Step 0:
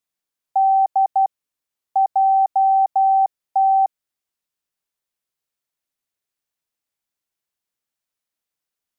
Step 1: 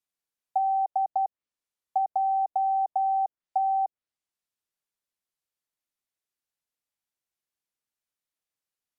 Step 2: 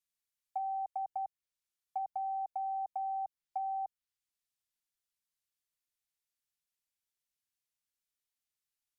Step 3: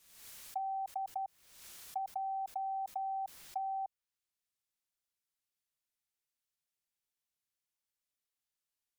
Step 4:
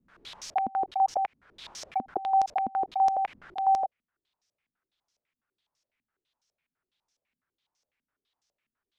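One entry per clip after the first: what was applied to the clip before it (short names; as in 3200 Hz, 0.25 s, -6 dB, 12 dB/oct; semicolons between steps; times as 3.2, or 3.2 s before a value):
treble ducked by the level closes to 690 Hz, closed at -15.5 dBFS; gain -5.5 dB
bell 470 Hz -15 dB 2.5 oct
backwards sustainer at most 58 dB/s; gain -1.5 dB
stepped low-pass 12 Hz 240–5700 Hz; gain +8.5 dB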